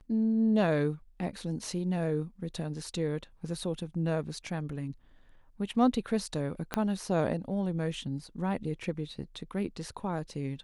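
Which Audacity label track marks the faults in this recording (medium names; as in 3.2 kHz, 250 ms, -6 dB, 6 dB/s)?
6.740000	6.740000	pop -14 dBFS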